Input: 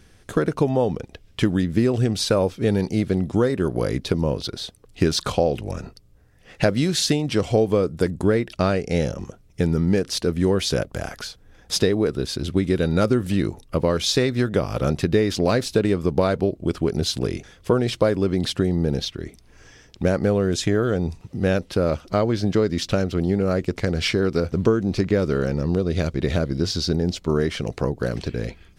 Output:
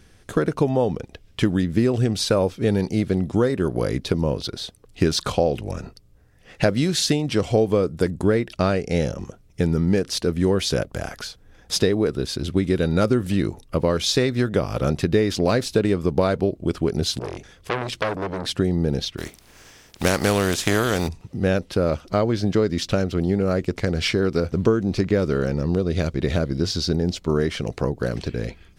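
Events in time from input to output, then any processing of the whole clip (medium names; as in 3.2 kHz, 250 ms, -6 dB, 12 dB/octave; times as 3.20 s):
17.19–18.50 s: transformer saturation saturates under 1.8 kHz
19.17–21.07 s: spectral contrast reduction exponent 0.54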